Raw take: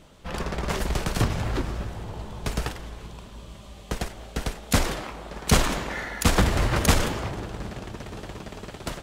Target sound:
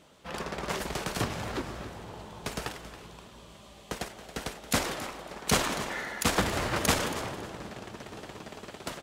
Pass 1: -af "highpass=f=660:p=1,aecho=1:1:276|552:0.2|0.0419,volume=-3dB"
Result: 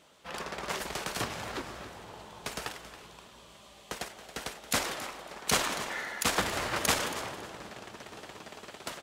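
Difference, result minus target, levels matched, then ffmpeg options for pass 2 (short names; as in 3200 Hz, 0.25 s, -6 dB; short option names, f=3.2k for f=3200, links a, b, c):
250 Hz band -5.0 dB
-af "highpass=f=240:p=1,aecho=1:1:276|552:0.2|0.0419,volume=-3dB"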